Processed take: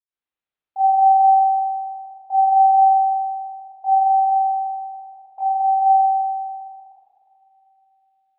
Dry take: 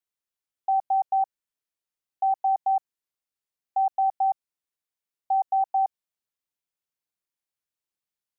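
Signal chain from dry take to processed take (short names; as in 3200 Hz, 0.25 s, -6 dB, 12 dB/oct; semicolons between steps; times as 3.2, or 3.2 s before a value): 3.98–5.71 dynamic EQ 640 Hz, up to -5 dB, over -34 dBFS, Q 0.92; reverb RT60 2.6 s, pre-delay 77 ms, DRR -60 dB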